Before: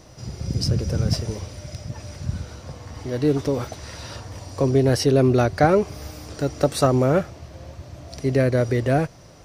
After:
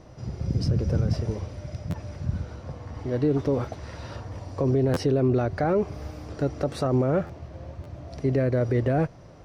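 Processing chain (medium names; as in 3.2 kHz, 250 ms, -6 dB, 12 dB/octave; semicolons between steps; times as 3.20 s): low-pass 1.4 kHz 6 dB/octave; peak limiter -14.5 dBFS, peak gain reduction 10.5 dB; buffer glitch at 1.90/4.93/7.26/7.83 s, samples 512, times 2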